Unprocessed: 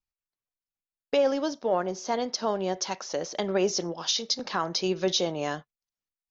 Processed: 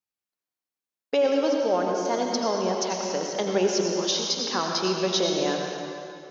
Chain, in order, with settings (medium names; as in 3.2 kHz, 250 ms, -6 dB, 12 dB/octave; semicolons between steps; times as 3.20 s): high-pass 190 Hz 12 dB/octave; bass shelf 250 Hz +4 dB; reverberation RT60 2.5 s, pre-delay 72 ms, DRR 0.5 dB